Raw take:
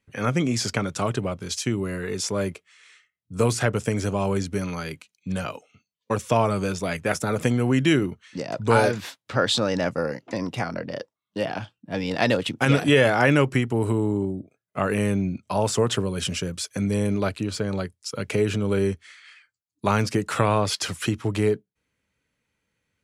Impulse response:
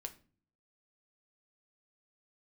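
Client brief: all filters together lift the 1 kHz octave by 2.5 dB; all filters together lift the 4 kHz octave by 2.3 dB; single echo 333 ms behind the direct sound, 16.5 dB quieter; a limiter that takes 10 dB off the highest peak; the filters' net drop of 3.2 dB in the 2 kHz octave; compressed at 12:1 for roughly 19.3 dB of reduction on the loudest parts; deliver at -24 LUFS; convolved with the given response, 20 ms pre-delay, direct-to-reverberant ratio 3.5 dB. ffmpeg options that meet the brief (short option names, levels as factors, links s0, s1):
-filter_complex "[0:a]equalizer=f=1000:t=o:g=5,equalizer=f=2000:t=o:g=-7.5,equalizer=f=4000:t=o:g=5,acompressor=threshold=0.0224:ratio=12,alimiter=level_in=1.58:limit=0.0631:level=0:latency=1,volume=0.631,aecho=1:1:333:0.15,asplit=2[s0][s1];[1:a]atrim=start_sample=2205,adelay=20[s2];[s1][s2]afir=irnorm=-1:irlink=0,volume=1[s3];[s0][s3]amix=inputs=2:normalize=0,volume=4.73"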